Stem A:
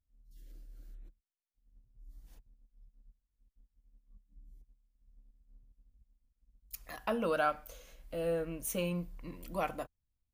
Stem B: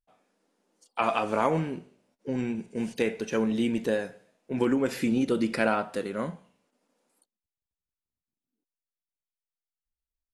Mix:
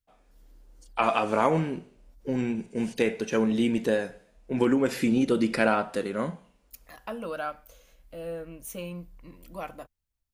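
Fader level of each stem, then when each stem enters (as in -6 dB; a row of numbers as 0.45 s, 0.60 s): -2.5 dB, +2.0 dB; 0.00 s, 0.00 s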